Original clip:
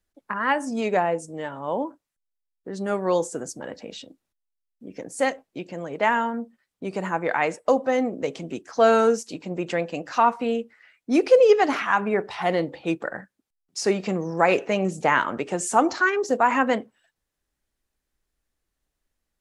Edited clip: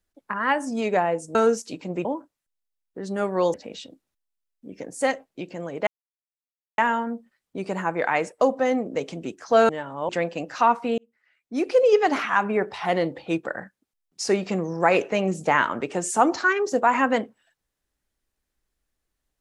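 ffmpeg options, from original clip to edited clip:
-filter_complex "[0:a]asplit=8[a][b][c][d][e][f][g][h];[a]atrim=end=1.352[i];[b]atrim=start=8.958:end=9.662[j];[c]atrim=start=1.748:end=3.242[k];[d]atrim=start=3.718:end=6.05,asetpts=PTS-STARTPTS,afade=t=out:st=2.328:d=0.004:c=hsin,apad=pad_dur=0.91[l];[e]atrim=start=6.05:end=8.962,asetpts=PTS-STARTPTS,afade=t=in:d=0.004:c=hsin[m];[f]atrim=start=1.348:end=1.752[n];[g]atrim=start=9.658:end=10.55,asetpts=PTS-STARTPTS,afade=t=out:st=0.888:d=0.004:c=hsin[o];[h]atrim=start=10.55,asetpts=PTS-STARTPTS,afade=t=in:d=1.17[p];[i][j]acrossfade=d=0.004:c1=hsin:c2=hsin[q];[q][k]acrossfade=d=0.004:c1=hsin:c2=hsin[r];[l][m]concat=n=2:v=0:a=1[s];[r][s]acrossfade=d=0.004:c1=hsin:c2=hsin[t];[t][n]acrossfade=d=0.004:c1=hsin:c2=hsin[u];[o][p]concat=n=2:v=0:a=1[v];[u][v]acrossfade=d=0.004:c1=hsin:c2=hsin"

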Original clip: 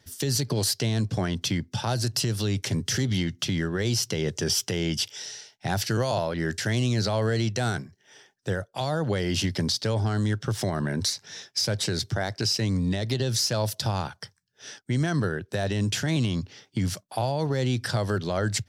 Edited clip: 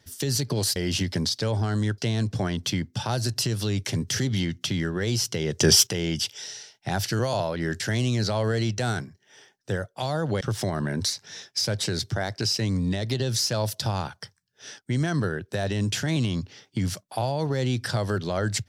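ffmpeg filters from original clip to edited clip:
-filter_complex "[0:a]asplit=6[a][b][c][d][e][f];[a]atrim=end=0.762[g];[b]atrim=start=9.188:end=10.412[h];[c]atrim=start=0.758:end=4.382[i];[d]atrim=start=4.378:end=4.652,asetpts=PTS-STARTPTS,volume=8.5dB[j];[e]atrim=start=4.648:end=9.192[k];[f]atrim=start=10.408[l];[g][h]acrossfade=d=0.004:c1=hsin:c2=hsin[m];[m][i]acrossfade=d=0.004:c1=hsin:c2=hsin[n];[n][j]acrossfade=d=0.004:c1=hsin:c2=hsin[o];[o][k]acrossfade=d=0.004:c1=hsin:c2=hsin[p];[p][l]acrossfade=d=0.004:c1=hsin:c2=hsin"

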